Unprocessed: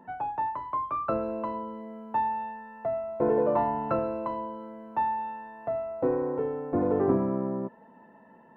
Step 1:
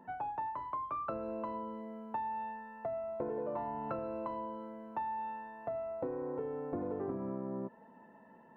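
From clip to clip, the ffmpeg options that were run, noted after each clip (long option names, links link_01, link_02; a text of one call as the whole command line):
ffmpeg -i in.wav -af "acompressor=threshold=-31dB:ratio=6,volume=-4dB" out.wav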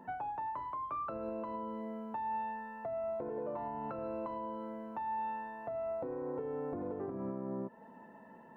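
ffmpeg -i in.wav -af "alimiter=level_in=10.5dB:limit=-24dB:level=0:latency=1:release=214,volume=-10.5dB,volume=3.5dB" out.wav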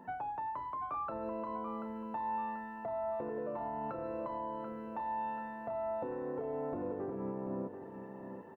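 ffmpeg -i in.wav -af "aecho=1:1:736|1472|2208|2944|3680:0.355|0.145|0.0596|0.0245|0.01" out.wav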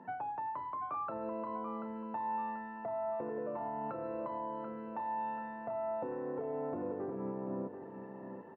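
ffmpeg -i in.wav -af "highpass=100,lowpass=3100" out.wav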